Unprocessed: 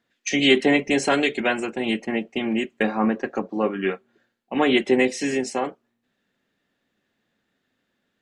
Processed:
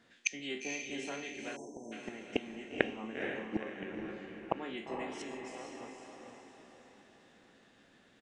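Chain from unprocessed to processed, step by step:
peak hold with a decay on every bin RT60 0.38 s
downsampling to 22,050 Hz
gate with flip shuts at −19 dBFS, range −31 dB
on a send: feedback delay with all-pass diffusion 471 ms, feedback 48%, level −4 dB
on the sum: time-frequency box erased 0:01.56–0:01.92, 1,000–5,300 Hz
level +6.5 dB

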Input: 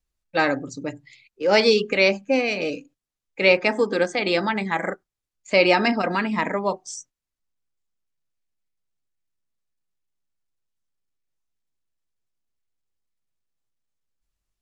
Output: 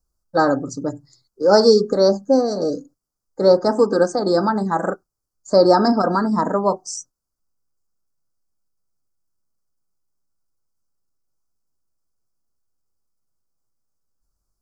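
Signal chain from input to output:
elliptic band-stop filter 1,400–4,800 Hz, stop band 70 dB
level +6 dB

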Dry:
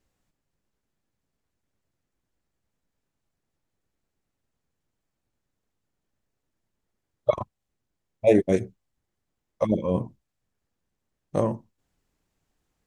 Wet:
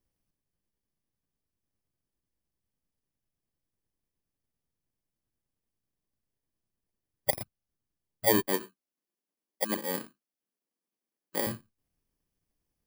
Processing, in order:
samples in bit-reversed order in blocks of 32 samples
0:08.47–0:11.47: high-pass filter 230 Hz 24 dB per octave
level −6.5 dB

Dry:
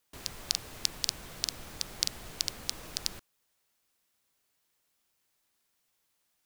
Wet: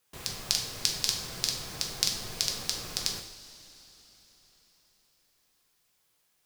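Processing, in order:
coupled-rooms reverb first 0.58 s, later 4.5 s, from −18 dB, DRR 0.5 dB
level +1.5 dB

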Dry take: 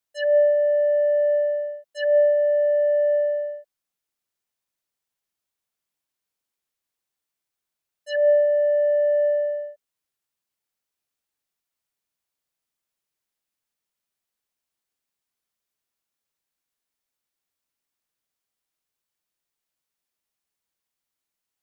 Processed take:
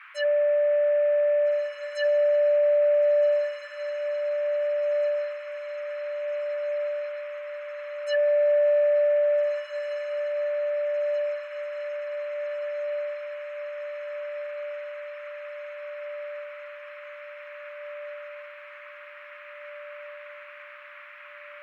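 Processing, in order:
brickwall limiter −18.5 dBFS, peak gain reduction 7 dB
noise in a band 1,100–2,500 Hz −48 dBFS
feedback delay with all-pass diffusion 1,762 ms, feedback 64%, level −6 dB

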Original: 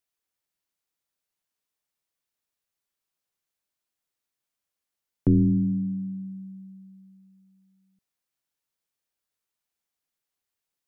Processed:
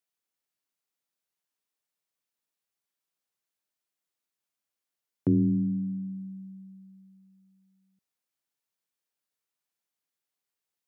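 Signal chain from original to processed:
high-pass filter 120 Hz
level −2.5 dB

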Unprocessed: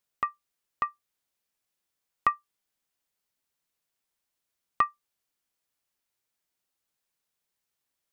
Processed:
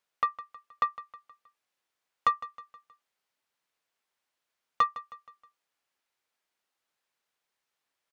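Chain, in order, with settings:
mid-hump overdrive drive 15 dB, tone 2,200 Hz, clips at −10 dBFS
repeating echo 158 ms, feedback 46%, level −16 dB
level −3 dB

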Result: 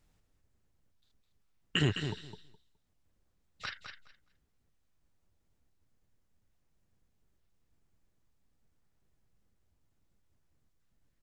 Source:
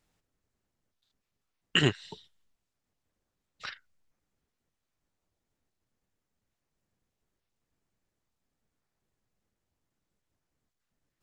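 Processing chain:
low-shelf EQ 140 Hz +10.5 dB
brickwall limiter −17.5 dBFS, peak gain reduction 9 dB
repeating echo 209 ms, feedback 17%, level −8 dB

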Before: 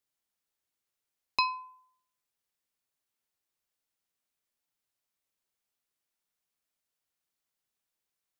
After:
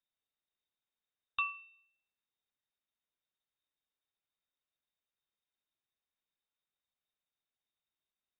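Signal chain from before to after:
low shelf with overshoot 120 Hz +10.5 dB, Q 3
on a send at −12.5 dB: convolution reverb RT60 0.50 s, pre-delay 3 ms
on the sum: voice inversion scrambler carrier 3,700 Hz
level −6 dB

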